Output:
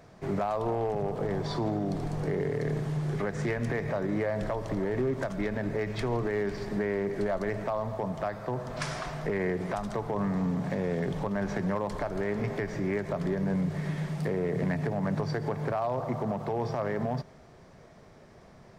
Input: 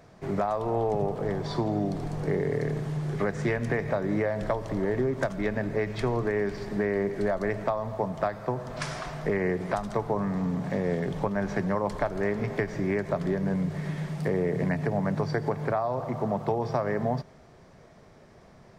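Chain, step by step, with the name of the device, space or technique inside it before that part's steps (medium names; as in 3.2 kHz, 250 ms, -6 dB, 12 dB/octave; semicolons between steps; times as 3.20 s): limiter into clipper (peak limiter -20.5 dBFS, peak gain reduction 7.5 dB; hard clipper -22.5 dBFS, distortion -25 dB)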